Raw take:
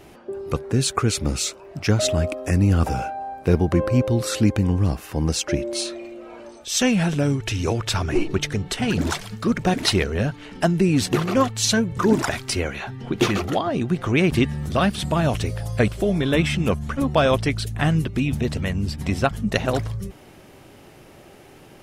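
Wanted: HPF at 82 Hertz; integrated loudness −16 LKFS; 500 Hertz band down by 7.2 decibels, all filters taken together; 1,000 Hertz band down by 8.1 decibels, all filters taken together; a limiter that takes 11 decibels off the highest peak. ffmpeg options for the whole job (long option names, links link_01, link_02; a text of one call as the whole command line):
ffmpeg -i in.wav -af "highpass=82,equalizer=frequency=500:width_type=o:gain=-7.5,equalizer=frequency=1000:width_type=o:gain=-8.5,volume=11dB,alimiter=limit=-5dB:level=0:latency=1" out.wav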